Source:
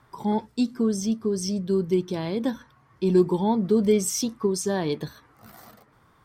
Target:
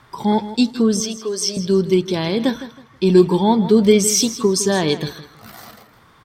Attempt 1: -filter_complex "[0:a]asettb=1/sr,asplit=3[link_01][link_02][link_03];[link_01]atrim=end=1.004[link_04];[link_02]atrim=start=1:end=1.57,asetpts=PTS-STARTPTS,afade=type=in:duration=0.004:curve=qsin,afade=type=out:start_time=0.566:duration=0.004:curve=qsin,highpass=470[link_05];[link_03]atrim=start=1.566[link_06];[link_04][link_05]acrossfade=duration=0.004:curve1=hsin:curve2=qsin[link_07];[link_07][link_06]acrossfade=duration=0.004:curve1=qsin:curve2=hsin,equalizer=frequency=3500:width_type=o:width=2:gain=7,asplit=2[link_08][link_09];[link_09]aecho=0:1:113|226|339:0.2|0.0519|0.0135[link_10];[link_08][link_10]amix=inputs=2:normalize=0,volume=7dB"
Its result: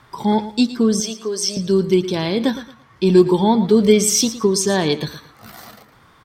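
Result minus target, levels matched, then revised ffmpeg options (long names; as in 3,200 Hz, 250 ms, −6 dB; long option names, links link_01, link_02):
echo 48 ms early
-filter_complex "[0:a]asettb=1/sr,asplit=3[link_01][link_02][link_03];[link_01]atrim=end=1.004[link_04];[link_02]atrim=start=1:end=1.57,asetpts=PTS-STARTPTS,afade=type=in:duration=0.004:curve=qsin,afade=type=out:start_time=0.566:duration=0.004:curve=qsin,highpass=470[link_05];[link_03]atrim=start=1.566[link_06];[link_04][link_05]acrossfade=duration=0.004:curve1=hsin:curve2=qsin[link_07];[link_07][link_06]acrossfade=duration=0.004:curve1=qsin:curve2=hsin,equalizer=frequency=3500:width_type=o:width=2:gain=7,asplit=2[link_08][link_09];[link_09]aecho=0:1:161|322|483:0.2|0.0519|0.0135[link_10];[link_08][link_10]amix=inputs=2:normalize=0,volume=7dB"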